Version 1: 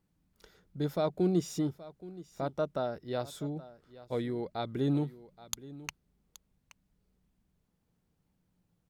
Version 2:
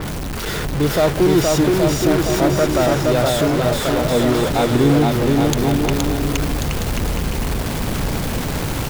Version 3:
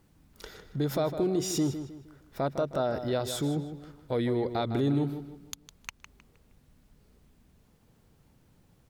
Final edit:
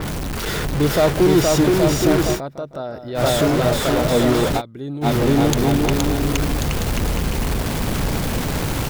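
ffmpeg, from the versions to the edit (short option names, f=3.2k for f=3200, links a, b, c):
-filter_complex "[1:a]asplit=3[a][b][c];[a]atrim=end=2.41,asetpts=PTS-STARTPTS[d];[2:a]atrim=start=2.31:end=3.24,asetpts=PTS-STARTPTS[e];[b]atrim=start=3.14:end=4.62,asetpts=PTS-STARTPTS[f];[0:a]atrim=start=4.56:end=5.07,asetpts=PTS-STARTPTS[g];[c]atrim=start=5.01,asetpts=PTS-STARTPTS[h];[d][e]acrossfade=d=0.1:c1=tri:c2=tri[i];[i][f]acrossfade=d=0.1:c1=tri:c2=tri[j];[j][g]acrossfade=d=0.06:c1=tri:c2=tri[k];[k][h]acrossfade=d=0.06:c1=tri:c2=tri"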